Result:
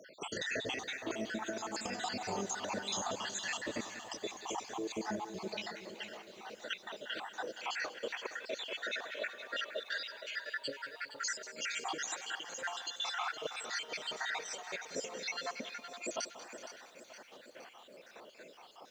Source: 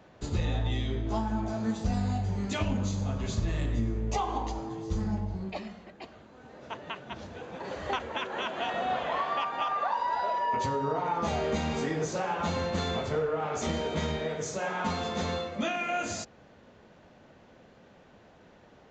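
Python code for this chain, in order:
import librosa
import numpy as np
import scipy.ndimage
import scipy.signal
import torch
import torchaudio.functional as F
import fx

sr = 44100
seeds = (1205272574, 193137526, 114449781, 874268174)

y = fx.spec_dropout(x, sr, seeds[0], share_pct=69)
y = scipy.signal.sosfilt(scipy.signal.butter(2, 390.0, 'highpass', fs=sr, output='sos'), y)
y = fx.tilt_eq(y, sr, slope=2.0)
y = fx.over_compress(y, sr, threshold_db=-44.0, ratio=-0.5)
y = fx.echo_feedback(y, sr, ms=188, feedback_pct=58, wet_db=-15)
y = fx.echo_crushed(y, sr, ms=466, feedback_pct=55, bits=11, wet_db=-11.5)
y = F.gain(torch.from_numpy(y), 3.5).numpy()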